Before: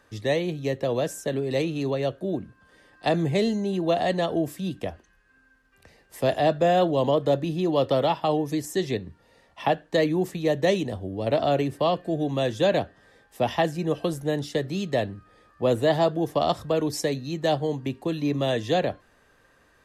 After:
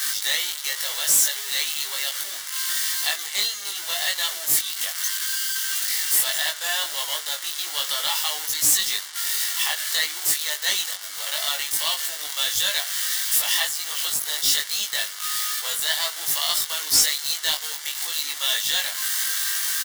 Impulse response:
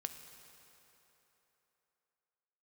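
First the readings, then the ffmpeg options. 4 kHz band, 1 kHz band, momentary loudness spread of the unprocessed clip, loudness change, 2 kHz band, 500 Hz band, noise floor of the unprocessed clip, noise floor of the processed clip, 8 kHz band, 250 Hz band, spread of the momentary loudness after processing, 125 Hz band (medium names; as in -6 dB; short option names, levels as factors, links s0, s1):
+14.0 dB, -7.5 dB, 8 LU, +3.5 dB, +8.0 dB, -19.5 dB, -61 dBFS, -34 dBFS, +22.5 dB, -26.0 dB, 7 LU, under -25 dB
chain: -filter_complex "[0:a]aeval=exprs='val(0)+0.5*0.0376*sgn(val(0))':c=same,apsyclip=7.08,highpass=1500,bandreject=f=2500:w=5.1,afftfilt=real='re*gte(hypot(re,im),0.0126)':imag='im*gte(hypot(re,im),0.0126)':win_size=1024:overlap=0.75,aderivative,volume=3.76,asoftclip=hard,volume=0.266,highshelf=f=5900:g=-5.5,asplit=2[s0][s1];[s1]adelay=20,volume=0.794[s2];[s0][s2]amix=inputs=2:normalize=0"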